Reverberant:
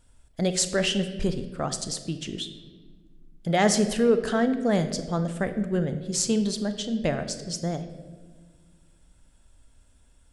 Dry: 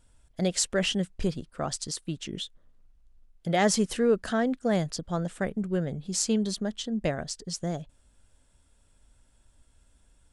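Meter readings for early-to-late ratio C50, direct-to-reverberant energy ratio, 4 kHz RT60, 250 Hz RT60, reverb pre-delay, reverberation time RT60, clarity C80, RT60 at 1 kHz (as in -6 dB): 10.5 dB, 9.0 dB, 0.95 s, 2.5 s, 23 ms, 1.4 s, 12.5 dB, 1.1 s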